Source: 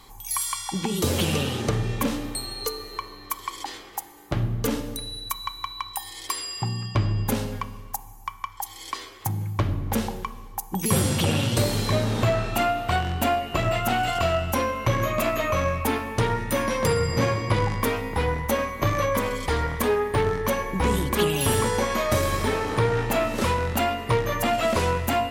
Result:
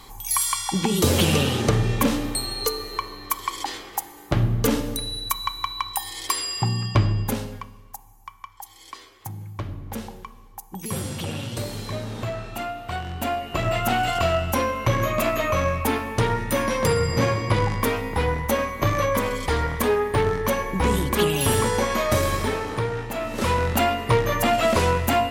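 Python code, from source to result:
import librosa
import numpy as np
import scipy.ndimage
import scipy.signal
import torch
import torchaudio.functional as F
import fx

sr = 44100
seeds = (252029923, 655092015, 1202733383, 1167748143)

y = fx.gain(x, sr, db=fx.line((6.96, 4.5), (7.75, -7.5), (12.81, -7.5), (13.83, 1.5), (22.28, 1.5), (23.14, -6.5), (23.57, 3.0)))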